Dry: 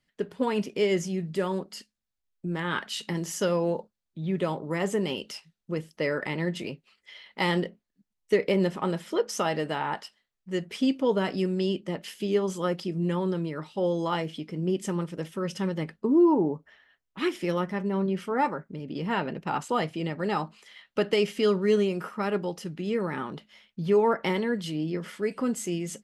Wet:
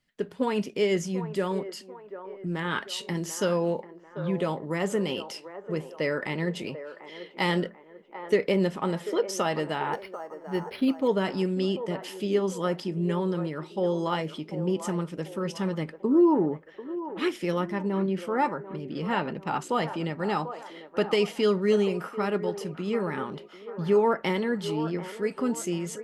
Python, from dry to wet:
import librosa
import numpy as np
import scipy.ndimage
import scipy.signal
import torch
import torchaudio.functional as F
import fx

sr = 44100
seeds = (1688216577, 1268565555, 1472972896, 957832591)

p1 = x + fx.echo_wet_bandpass(x, sr, ms=741, feedback_pct=45, hz=750.0, wet_db=-10, dry=0)
y = fx.resample_linear(p1, sr, factor=6, at=(9.93, 11.08))